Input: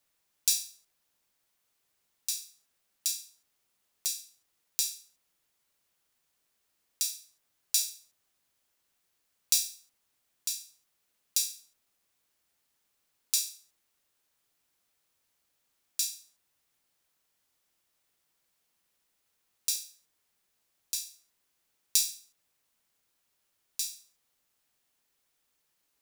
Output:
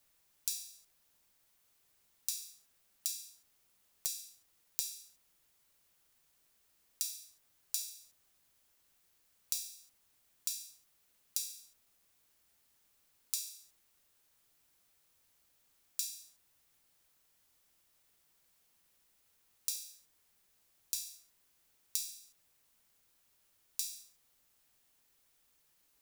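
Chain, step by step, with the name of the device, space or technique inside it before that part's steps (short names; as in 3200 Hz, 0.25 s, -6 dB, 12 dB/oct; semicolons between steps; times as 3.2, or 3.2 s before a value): ASMR close-microphone chain (low shelf 110 Hz +7 dB; compressor 8:1, threshold -37 dBFS, peak gain reduction 17 dB; high shelf 9300 Hz +4 dB); gain +2 dB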